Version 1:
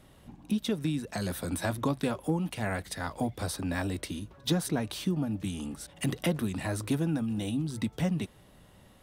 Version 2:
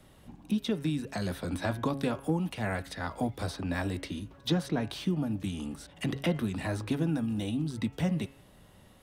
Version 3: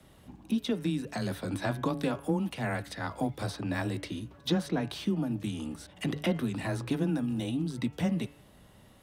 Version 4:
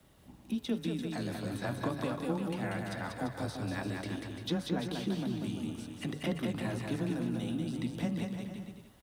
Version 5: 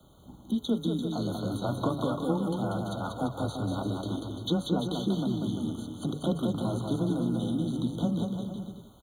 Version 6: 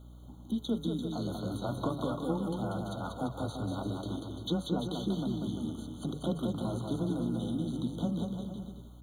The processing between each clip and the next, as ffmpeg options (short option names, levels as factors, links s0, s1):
-filter_complex "[0:a]bandreject=f=137.7:t=h:w=4,bandreject=f=275.4:t=h:w=4,bandreject=f=413.1:t=h:w=4,bandreject=f=550.8:t=h:w=4,bandreject=f=688.5:t=h:w=4,bandreject=f=826.2:t=h:w=4,bandreject=f=963.9:t=h:w=4,bandreject=f=1101.6:t=h:w=4,bandreject=f=1239.3:t=h:w=4,bandreject=f=1377:t=h:w=4,bandreject=f=1514.7:t=h:w=4,bandreject=f=1652.4:t=h:w=4,bandreject=f=1790.1:t=h:w=4,bandreject=f=1927.8:t=h:w=4,bandreject=f=2065.5:t=h:w=4,bandreject=f=2203.2:t=h:w=4,bandreject=f=2340.9:t=h:w=4,bandreject=f=2478.6:t=h:w=4,bandreject=f=2616.3:t=h:w=4,bandreject=f=2754:t=h:w=4,bandreject=f=2891.7:t=h:w=4,bandreject=f=3029.4:t=h:w=4,bandreject=f=3167.1:t=h:w=4,acrossover=split=100|720|5400[s0][s1][s2][s3];[s3]acompressor=threshold=0.00224:ratio=6[s4];[s0][s1][s2][s4]amix=inputs=4:normalize=0"
-af "afreqshift=14"
-af "acrusher=bits=10:mix=0:aa=0.000001,aecho=1:1:190|342|463.6|560.9|638.7:0.631|0.398|0.251|0.158|0.1,volume=0.531"
-af "afftfilt=real='re*eq(mod(floor(b*sr/1024/1500),2),0)':imag='im*eq(mod(floor(b*sr/1024/1500),2),0)':win_size=1024:overlap=0.75,volume=1.88"
-af "aeval=exprs='val(0)+0.00562*(sin(2*PI*60*n/s)+sin(2*PI*2*60*n/s)/2+sin(2*PI*3*60*n/s)/3+sin(2*PI*4*60*n/s)/4+sin(2*PI*5*60*n/s)/5)':c=same,volume=0.631"